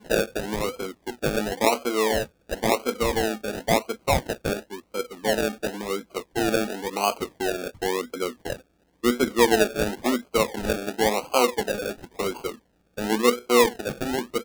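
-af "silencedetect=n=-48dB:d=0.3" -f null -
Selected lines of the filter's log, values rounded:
silence_start: 8.61
silence_end: 9.03 | silence_duration: 0.42
silence_start: 12.59
silence_end: 12.97 | silence_duration: 0.38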